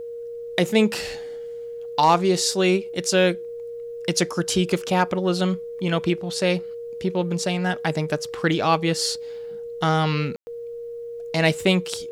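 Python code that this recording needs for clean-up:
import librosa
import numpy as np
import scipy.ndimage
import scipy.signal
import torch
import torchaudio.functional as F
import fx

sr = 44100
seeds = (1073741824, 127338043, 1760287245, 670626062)

y = fx.fix_declip(x, sr, threshold_db=-7.0)
y = fx.notch(y, sr, hz=470.0, q=30.0)
y = fx.fix_ambience(y, sr, seeds[0], print_start_s=1.38, print_end_s=1.88, start_s=10.36, end_s=10.47)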